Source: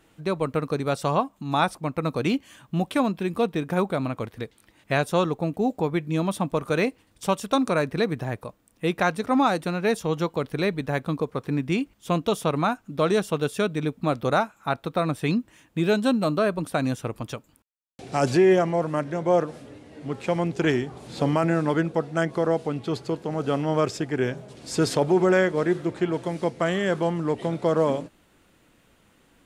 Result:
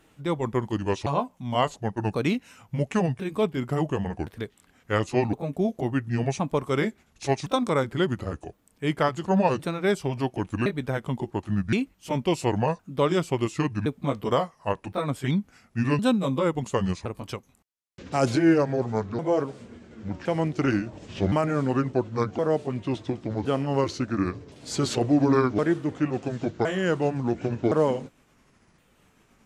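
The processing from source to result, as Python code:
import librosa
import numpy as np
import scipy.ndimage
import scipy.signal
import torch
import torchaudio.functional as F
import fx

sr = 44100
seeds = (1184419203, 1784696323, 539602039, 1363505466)

y = fx.pitch_ramps(x, sr, semitones=-7.0, every_ms=1066)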